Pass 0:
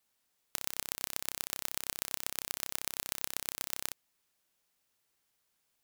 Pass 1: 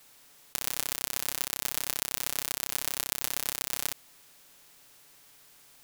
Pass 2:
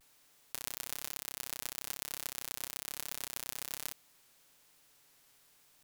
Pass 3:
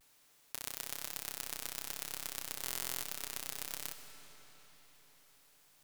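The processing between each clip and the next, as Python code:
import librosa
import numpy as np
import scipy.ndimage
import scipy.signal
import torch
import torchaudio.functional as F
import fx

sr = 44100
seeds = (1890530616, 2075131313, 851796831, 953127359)

y1 = fx.bin_compress(x, sr, power=0.6)
y1 = y1 + 0.67 * np.pad(y1, (int(7.0 * sr / 1000.0), 0))[:len(y1)]
y1 = y1 * librosa.db_to_amplitude(2.0)
y2 = fx.vibrato(y1, sr, rate_hz=1.1, depth_cents=80.0)
y2 = y2 * librosa.db_to_amplitude(-8.5)
y3 = fx.rev_freeverb(y2, sr, rt60_s=4.6, hf_ratio=0.85, predelay_ms=50, drr_db=7.5)
y3 = fx.buffer_glitch(y3, sr, at_s=(2.63,), block=1024, repeats=16)
y3 = y3 * librosa.db_to_amplitude(-1.0)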